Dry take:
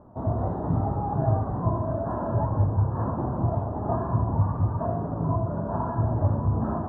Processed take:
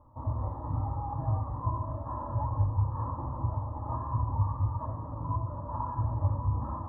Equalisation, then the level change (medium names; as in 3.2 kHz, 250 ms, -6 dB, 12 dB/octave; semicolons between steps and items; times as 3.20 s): static phaser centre 700 Hz, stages 6; static phaser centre 1.5 kHz, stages 6; 0.0 dB